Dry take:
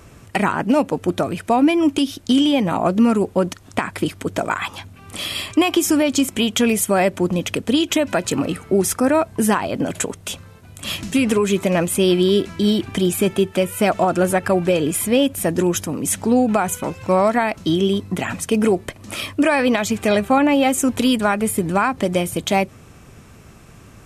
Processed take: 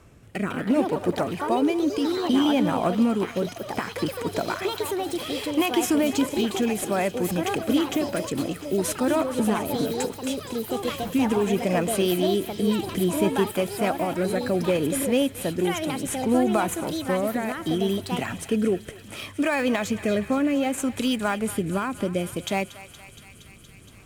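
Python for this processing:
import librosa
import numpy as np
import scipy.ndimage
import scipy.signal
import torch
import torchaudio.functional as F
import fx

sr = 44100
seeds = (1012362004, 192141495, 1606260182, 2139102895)

p1 = fx.sample_hold(x, sr, seeds[0], rate_hz=9200.0, jitter_pct=0)
p2 = x + (p1 * librosa.db_to_amplitude(-11.0))
p3 = fx.rotary(p2, sr, hz=0.65)
p4 = fx.echo_thinned(p3, sr, ms=234, feedback_pct=85, hz=1000.0, wet_db=-14)
p5 = fx.echo_pitch(p4, sr, ms=226, semitones=4, count=3, db_per_echo=-6.0)
y = p5 * librosa.db_to_amplitude(-7.0)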